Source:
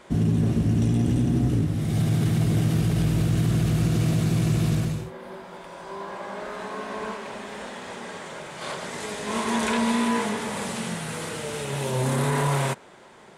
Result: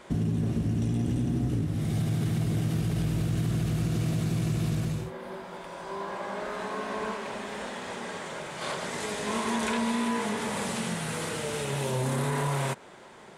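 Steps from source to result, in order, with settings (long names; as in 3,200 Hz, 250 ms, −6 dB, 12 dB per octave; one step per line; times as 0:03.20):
downward compressor 2.5 to 1, threshold −27 dBFS, peak gain reduction 6.5 dB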